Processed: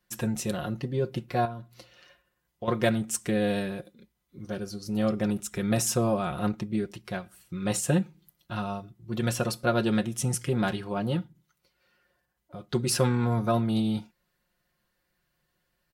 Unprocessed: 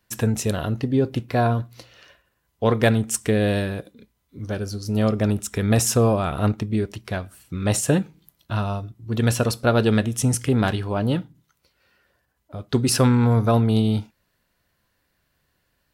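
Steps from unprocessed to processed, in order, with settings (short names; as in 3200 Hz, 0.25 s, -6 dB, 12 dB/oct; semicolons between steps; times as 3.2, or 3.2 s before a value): comb 5.6 ms, depth 73%; 1.45–2.68 compressor 5:1, threshold -27 dBFS, peak gain reduction 11.5 dB; gain -7.5 dB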